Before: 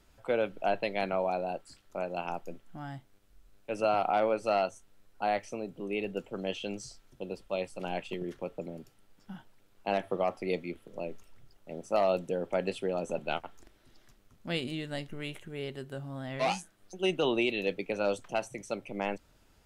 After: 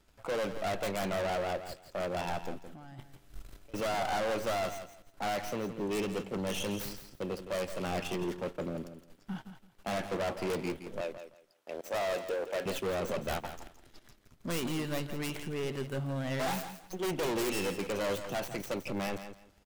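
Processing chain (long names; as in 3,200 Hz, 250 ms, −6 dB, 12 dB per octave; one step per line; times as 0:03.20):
stylus tracing distortion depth 0.47 ms
0:11.01–0:12.66: high-pass filter 490 Hz 12 dB per octave
leveller curve on the samples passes 2
0:02.67–0:03.74: compressor whose output falls as the input rises −46 dBFS, ratio −1
soft clipping −30 dBFS, distortion −8 dB
repeating echo 167 ms, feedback 20%, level −10.5 dB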